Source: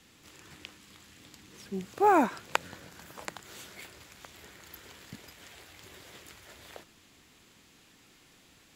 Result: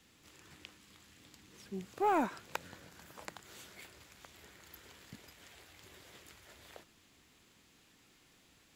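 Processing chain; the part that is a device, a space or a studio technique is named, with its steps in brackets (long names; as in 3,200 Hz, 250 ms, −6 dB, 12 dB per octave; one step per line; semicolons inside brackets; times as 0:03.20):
open-reel tape (soft clipping −16 dBFS, distortion −16 dB; parametric band 61 Hz +2 dB; white noise bed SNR 44 dB)
level −6 dB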